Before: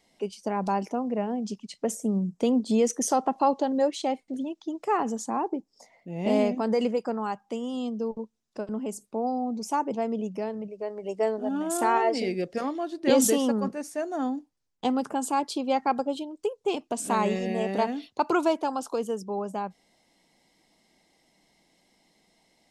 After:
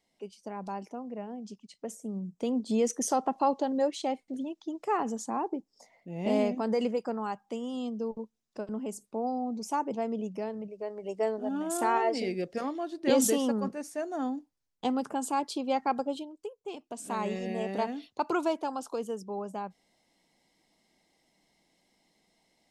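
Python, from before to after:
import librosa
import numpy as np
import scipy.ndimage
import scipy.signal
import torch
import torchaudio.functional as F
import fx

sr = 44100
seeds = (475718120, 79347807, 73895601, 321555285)

y = fx.gain(x, sr, db=fx.line((2.07, -10.5), (2.86, -3.5), (16.16, -3.5), (16.57, -13.5), (17.47, -5.0)))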